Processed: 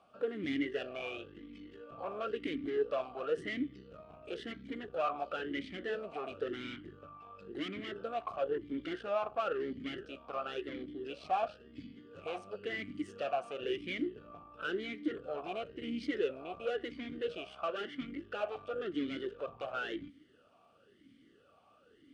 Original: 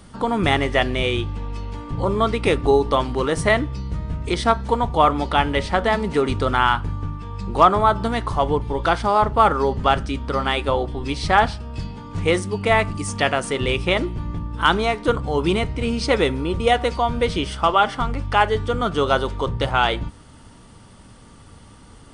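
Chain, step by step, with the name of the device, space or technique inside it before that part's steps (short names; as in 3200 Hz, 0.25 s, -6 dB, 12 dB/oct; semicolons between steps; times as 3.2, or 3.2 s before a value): talk box (tube stage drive 21 dB, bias 0.65; vowel sweep a-i 0.97 Hz)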